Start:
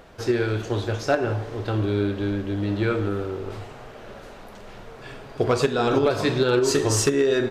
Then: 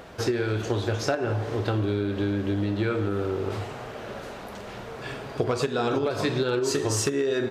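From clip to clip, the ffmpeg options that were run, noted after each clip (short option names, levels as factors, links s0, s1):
-af "highpass=56,acompressor=threshold=0.0447:ratio=6,volume=1.68"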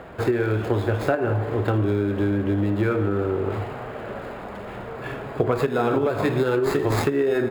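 -filter_complex "[0:a]equalizer=f=4300:t=o:w=0.77:g=-3.5,acrossover=split=310|3100[s0][s1][s2];[s2]acrusher=samples=15:mix=1:aa=0.000001[s3];[s0][s1][s3]amix=inputs=3:normalize=0,volume=1.58"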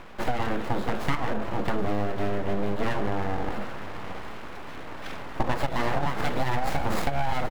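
-af "aeval=exprs='abs(val(0))':c=same,aecho=1:1:776:0.15,volume=0.794"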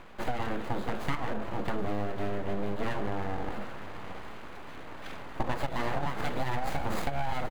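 -af "bandreject=f=5400:w=13,volume=0.562"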